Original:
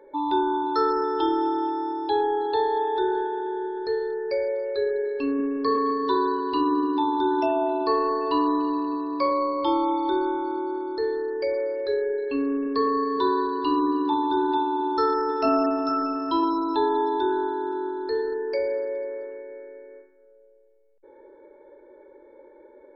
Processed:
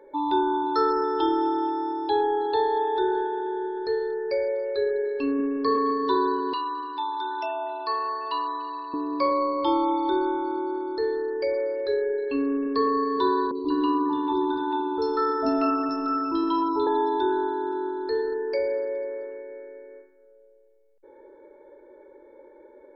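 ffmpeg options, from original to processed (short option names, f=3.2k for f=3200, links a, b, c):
-filter_complex "[0:a]asettb=1/sr,asplit=3[a][b][c];[a]atrim=end=6.534[d];[b]atrim=start=6.53:end=8.94,asetpts=PTS-STARTPTS,afade=t=in:d=0.004:c=qsin,afade=t=out:st=2.406:d=0.004:c=qsin,highpass=930[e];[c]atrim=start=8.936[f];[d][e]acrossfade=d=0.004:c1=hsin:c2=qsin[g];[g][f]acrossfade=d=0.004:c1=qsin:c2=hsin,asettb=1/sr,asplit=3[h][i][j];[h]atrim=end=13.514[k];[i]atrim=start=13.51:end=16.87,asetpts=PTS-STARTPTS,afade=t=in:d=0.004:c=qsin,afade=t=out:st=3.356:d=0.004:c=qsin,acrossover=split=690|3900[l][m][n];[n]adelay=40[o];[m]adelay=190[p];[l][p][o]amix=inputs=3:normalize=0,atrim=end_sample=148176[q];[j]atrim=start=16.866[r];[k][q]acrossfade=d=0.004:c1=hsin:c2=qsin[s];[s][r]acrossfade=d=0.004:c1=qsin:c2=hsin"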